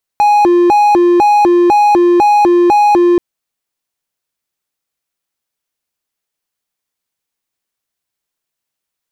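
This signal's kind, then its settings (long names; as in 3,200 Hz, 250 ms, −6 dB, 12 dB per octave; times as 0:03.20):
siren hi-lo 350–830 Hz 2 per second triangle −3.5 dBFS 2.98 s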